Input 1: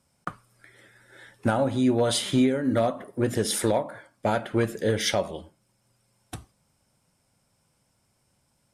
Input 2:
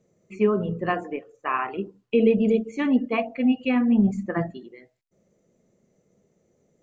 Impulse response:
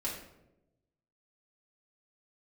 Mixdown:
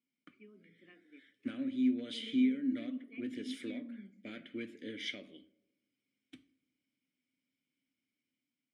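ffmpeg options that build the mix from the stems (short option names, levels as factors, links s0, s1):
-filter_complex "[0:a]volume=0.562,asplit=2[s0][s1];[s1]volume=0.126[s2];[1:a]volume=0.126[s3];[2:a]atrim=start_sample=2205[s4];[s2][s4]afir=irnorm=-1:irlink=0[s5];[s0][s3][s5]amix=inputs=3:normalize=0,dynaudnorm=f=460:g=3:m=1.58,asplit=3[s6][s7][s8];[s6]bandpass=f=270:t=q:w=8,volume=1[s9];[s7]bandpass=f=2290:t=q:w=8,volume=0.501[s10];[s8]bandpass=f=3010:t=q:w=8,volume=0.355[s11];[s9][s10][s11]amix=inputs=3:normalize=0,lowshelf=f=340:g=-8"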